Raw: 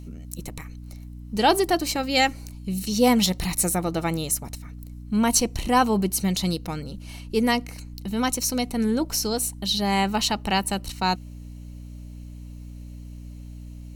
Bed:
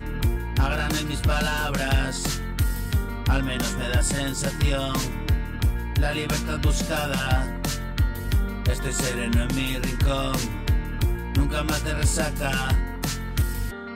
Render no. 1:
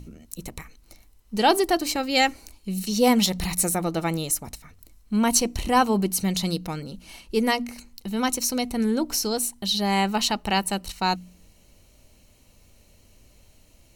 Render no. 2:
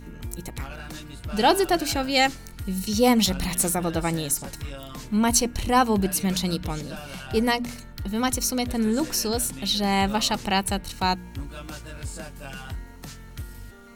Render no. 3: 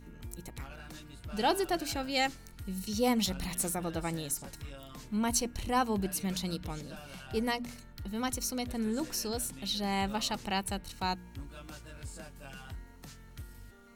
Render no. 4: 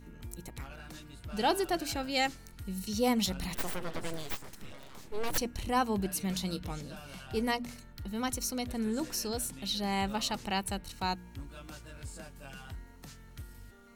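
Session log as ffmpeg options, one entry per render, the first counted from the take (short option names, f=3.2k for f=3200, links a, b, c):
-af "bandreject=f=60:t=h:w=4,bandreject=f=120:t=h:w=4,bandreject=f=180:t=h:w=4,bandreject=f=240:t=h:w=4,bandreject=f=300:t=h:w=4"
-filter_complex "[1:a]volume=-13dB[a];[0:a][a]amix=inputs=2:normalize=0"
-af "volume=-9.5dB"
-filter_complex "[0:a]asettb=1/sr,asplit=3[a][b][c];[a]atrim=end=3.544[d];[b]atrim=start=3.54:end=5.38,asetpts=PTS-STARTPTS,afade=t=in:d=0.004:c=qsin,afade=t=out:st=1.836:d=0.004:c=qsin,aeval=exprs='abs(val(0))':c=same[e];[c]atrim=start=5.376[f];[d][e]acrossfade=d=0.004:c1=hsin:c2=qsin[g];[g][f]acrossfade=d=0.004:c1=qsin:c2=hsin,asettb=1/sr,asplit=3[h][i][j];[h]atrim=end=6.274[k];[i]atrim=start=6.27:end=7.57,asetpts=PTS-STARTPTS,afade=t=in:d=0.004:c=qsin,afade=t=out:st=1.296:d=0.004:c=qsin,asplit=2[l][m];[m]adelay=21,volume=-12dB[n];[l][n]amix=inputs=2:normalize=0,atrim=end_sample=57330[o];[j]atrim=start=7.566[p];[k][o]acrossfade=d=0.004:c1=hsin:c2=qsin[q];[q][p]acrossfade=d=0.004:c1=qsin:c2=hsin"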